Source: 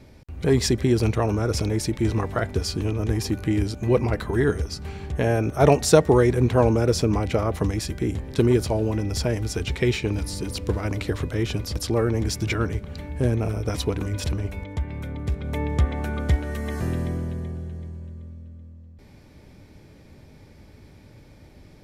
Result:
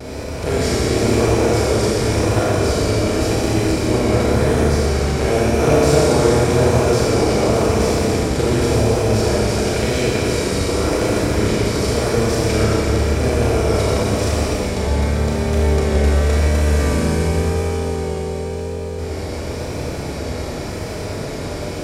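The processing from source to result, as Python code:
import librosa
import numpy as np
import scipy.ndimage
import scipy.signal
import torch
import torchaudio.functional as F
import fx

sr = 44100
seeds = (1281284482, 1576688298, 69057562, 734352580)

y = fx.bin_compress(x, sr, power=0.4)
y = fx.rev_schroeder(y, sr, rt60_s=3.5, comb_ms=28, drr_db=-7.5)
y = fx.vibrato(y, sr, rate_hz=0.92, depth_cents=37.0)
y = y * 10.0 ** (-9.0 / 20.0)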